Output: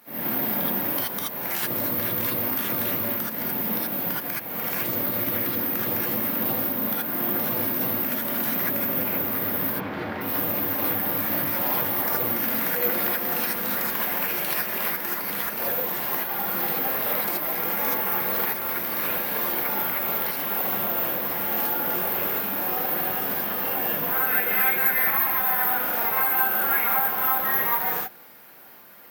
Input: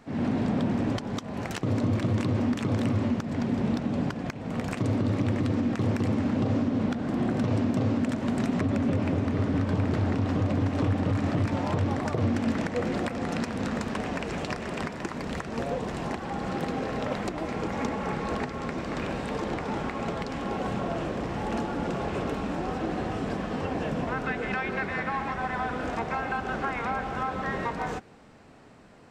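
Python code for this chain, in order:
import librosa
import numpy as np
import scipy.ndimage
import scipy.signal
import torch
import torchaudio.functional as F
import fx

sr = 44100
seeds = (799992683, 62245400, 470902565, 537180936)

y = fx.highpass(x, sr, hz=870.0, slope=6)
y = (np.kron(scipy.signal.resample_poly(y, 1, 3), np.eye(3)[0]) * 3)[:len(y)]
y = fx.lowpass(y, sr, hz=3200.0, slope=12, at=(9.71, 10.21))
y = fx.rev_gated(y, sr, seeds[0], gate_ms=100, shape='rising', drr_db=-5.5)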